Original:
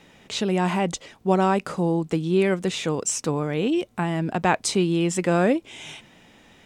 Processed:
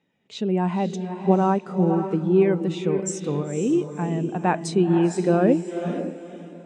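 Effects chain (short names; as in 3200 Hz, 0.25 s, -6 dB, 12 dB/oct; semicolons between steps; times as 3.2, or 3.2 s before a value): HPF 88 Hz; diffused feedback echo 0.51 s, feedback 43%, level -5 dB; spectral expander 1.5:1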